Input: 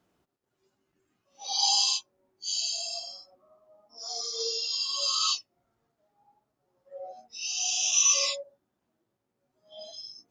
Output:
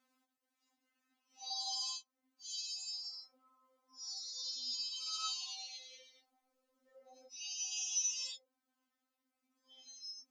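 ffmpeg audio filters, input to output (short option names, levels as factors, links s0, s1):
-filter_complex "[0:a]highpass=160,equalizer=f=550:w=0.84:g=-5.5,asettb=1/sr,asplit=3[s0][s1][s2];[s0]atrim=end=4.354[s3];[s1]atrim=start=4.35:end=7.27,asetpts=PTS-STARTPTS,afade=t=in:d=0.004:c=qsin,afade=t=out:st=2.916:d=0.004:c=qsin,asplit=9[s4][s5][s6][s7][s8][s9][s10][s11][s12];[s5]adelay=108,afreqshift=-110,volume=0.531[s13];[s6]adelay=216,afreqshift=-220,volume=0.309[s14];[s7]adelay=324,afreqshift=-330,volume=0.178[s15];[s8]adelay=432,afreqshift=-440,volume=0.104[s16];[s9]adelay=540,afreqshift=-550,volume=0.0603[s17];[s10]adelay=648,afreqshift=-660,volume=0.0347[s18];[s11]adelay=756,afreqshift=-770,volume=0.0202[s19];[s12]adelay=864,afreqshift=-880,volume=0.0117[s20];[s4][s13][s14][s15][s16][s17][s18][s19][s20]amix=inputs=9:normalize=0,atrim=end_sample=128772[s21];[s2]atrim=start=7.266[s22];[s3][s21]acrossfade=d=0.004:c1=hsin:c2=qsin[s23];[s23][s22]acrossfade=d=0.004:c1=qsin:c2=hsin,acompressor=threshold=0.00447:ratio=2,lowshelf=f=260:g=-7.5,afftfilt=real='re*3.46*eq(mod(b,12),0)':imag='im*3.46*eq(mod(b,12),0)':win_size=2048:overlap=0.75,volume=1.12"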